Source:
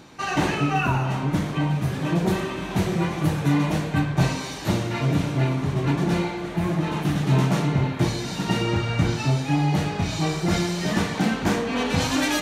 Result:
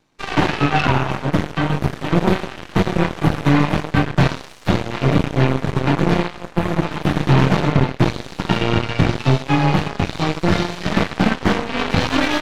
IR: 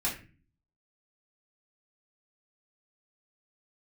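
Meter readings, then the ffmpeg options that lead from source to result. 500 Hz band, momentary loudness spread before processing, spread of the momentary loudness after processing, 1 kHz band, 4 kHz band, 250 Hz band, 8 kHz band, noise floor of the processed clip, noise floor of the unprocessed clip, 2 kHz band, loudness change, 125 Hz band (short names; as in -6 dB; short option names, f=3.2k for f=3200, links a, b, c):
+6.0 dB, 4 LU, 5 LU, +6.0 dB, +4.5 dB, +4.5 dB, -3.0 dB, -38 dBFS, -32 dBFS, +6.0 dB, +4.5 dB, +4.0 dB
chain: -filter_complex "[0:a]aeval=exprs='0.355*(cos(1*acos(clip(val(0)/0.355,-1,1)))-cos(1*PI/2))+0.0794*(cos(3*acos(clip(val(0)/0.355,-1,1)))-cos(3*PI/2))+0.112*(cos(5*acos(clip(val(0)/0.355,-1,1)))-cos(5*PI/2))+0.0355*(cos(6*acos(clip(val(0)/0.355,-1,1)))-cos(6*PI/2))+0.1*(cos(7*acos(clip(val(0)/0.355,-1,1)))-cos(7*PI/2))':c=same,acrossover=split=4400[a][b];[b]acompressor=threshold=-50dB:ratio=4:attack=1:release=60[c];[a][c]amix=inputs=2:normalize=0,volume=6.5dB"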